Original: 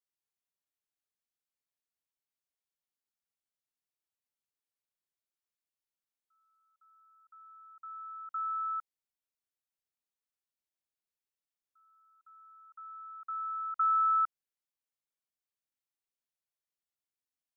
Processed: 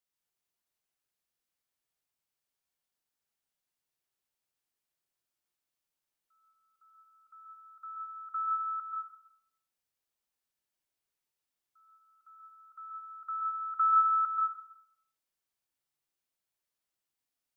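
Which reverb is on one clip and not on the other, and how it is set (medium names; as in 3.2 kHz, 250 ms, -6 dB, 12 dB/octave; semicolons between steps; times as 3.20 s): plate-style reverb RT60 0.7 s, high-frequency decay 0.8×, pre-delay 115 ms, DRR 1 dB; trim +2.5 dB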